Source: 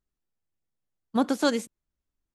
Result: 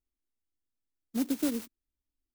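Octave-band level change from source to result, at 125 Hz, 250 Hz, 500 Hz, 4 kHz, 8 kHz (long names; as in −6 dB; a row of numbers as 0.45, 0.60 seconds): can't be measured, −4.0 dB, −12.5 dB, −11.0 dB, −2.5 dB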